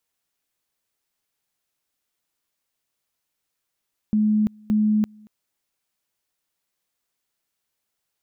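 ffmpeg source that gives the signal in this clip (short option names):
-f lavfi -i "aevalsrc='pow(10,(-16-28.5*gte(mod(t,0.57),0.34))/20)*sin(2*PI*213*t)':d=1.14:s=44100"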